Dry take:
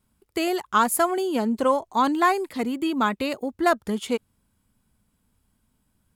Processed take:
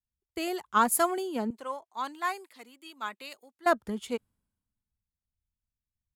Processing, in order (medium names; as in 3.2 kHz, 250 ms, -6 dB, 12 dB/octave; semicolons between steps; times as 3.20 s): 1.50–3.66 s: high-pass 1.3 kHz 6 dB/octave; three bands expanded up and down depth 70%; trim -7.5 dB